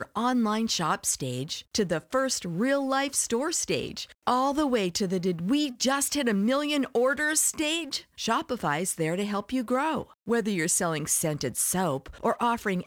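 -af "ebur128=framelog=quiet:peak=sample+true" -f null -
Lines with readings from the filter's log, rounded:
Integrated loudness:
  I:         -26.8 LUFS
  Threshold: -36.8 LUFS
Loudness range:
  LRA:         2.1 LU
  Threshold: -46.8 LUFS
  LRA low:   -27.8 LUFS
  LRA high:  -25.7 LUFS
Sample peak:
  Peak:      -10.2 dBFS
True peak:
  Peak:      -10.1 dBFS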